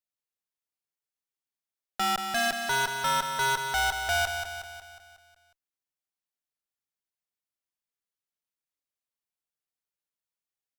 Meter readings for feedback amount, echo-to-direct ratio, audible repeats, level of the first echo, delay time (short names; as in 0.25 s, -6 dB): 54%, -5.5 dB, 6, -7.0 dB, 0.182 s